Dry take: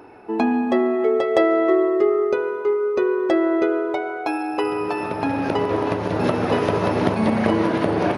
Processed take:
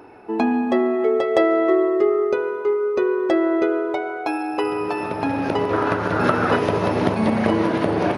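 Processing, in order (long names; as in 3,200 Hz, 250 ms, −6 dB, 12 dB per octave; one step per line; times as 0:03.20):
0:05.73–0:06.56: parametric band 1,400 Hz +13 dB 0.53 octaves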